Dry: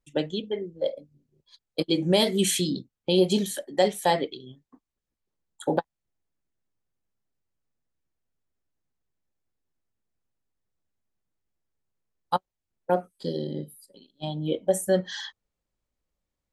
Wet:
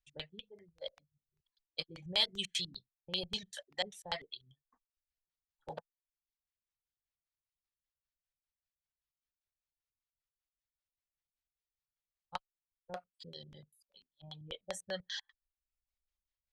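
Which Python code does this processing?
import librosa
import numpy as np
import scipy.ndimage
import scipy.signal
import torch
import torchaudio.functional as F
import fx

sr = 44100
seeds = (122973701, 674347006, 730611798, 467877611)

y = fx.filter_lfo_lowpass(x, sr, shape='square', hz=5.1, low_hz=350.0, high_hz=4600.0, q=0.95)
y = fx.tone_stack(y, sr, knobs='10-0-10')
y = fx.dereverb_blind(y, sr, rt60_s=0.64)
y = y * librosa.db_to_amplitude(-2.0)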